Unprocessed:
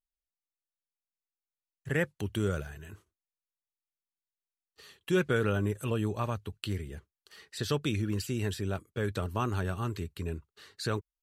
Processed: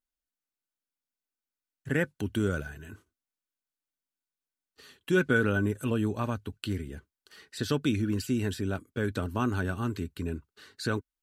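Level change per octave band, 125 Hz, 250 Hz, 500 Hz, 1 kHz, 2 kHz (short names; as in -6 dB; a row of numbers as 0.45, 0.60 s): +0.5, +4.5, +1.0, +0.5, +5.0 dB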